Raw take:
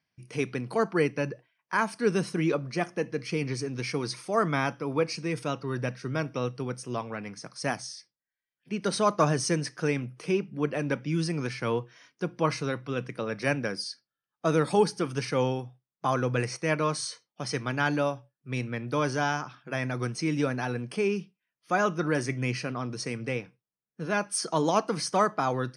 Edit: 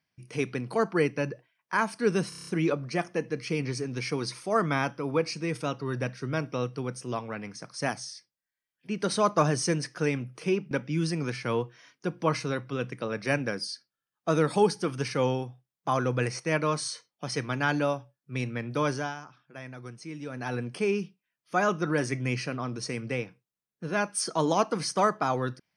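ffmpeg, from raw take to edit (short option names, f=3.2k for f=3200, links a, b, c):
-filter_complex "[0:a]asplit=10[a][b][c][d][e][f][g][h][i][j];[a]atrim=end=2.322[k];[b]atrim=start=2.288:end=2.322[l];[c]atrim=start=2.288:end=2.322[m];[d]atrim=start=2.288:end=2.322[n];[e]atrim=start=2.288:end=2.322[o];[f]atrim=start=2.288:end=2.322[p];[g]atrim=start=2.288:end=10.532[q];[h]atrim=start=10.878:end=19.32,asetpts=PTS-STARTPTS,afade=t=out:st=8.182:d=0.26:silence=0.266073[r];[i]atrim=start=19.32:end=20.46,asetpts=PTS-STARTPTS,volume=-11.5dB[s];[j]atrim=start=20.46,asetpts=PTS-STARTPTS,afade=t=in:d=0.26:silence=0.266073[t];[k][l]acrossfade=d=0.004:c1=hsin:c2=hsin[u];[u][m]acrossfade=d=0.004:c1=hsin:c2=hsin[v];[v][n]acrossfade=d=0.004:c1=hsin:c2=hsin[w];[w][o]acrossfade=d=0.004:c1=hsin:c2=hsin[x];[x][p]acrossfade=d=0.004:c1=hsin:c2=hsin[y];[y][q]acrossfade=d=0.004:c1=hsin:c2=hsin[z];[r][s][t]concat=n=3:v=0:a=1[aa];[z][aa]acrossfade=d=0.004:c1=hsin:c2=hsin"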